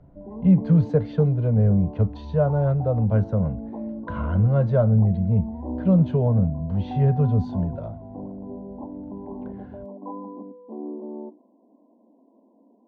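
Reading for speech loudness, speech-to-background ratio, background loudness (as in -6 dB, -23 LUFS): -21.5 LUFS, 14.0 dB, -35.5 LUFS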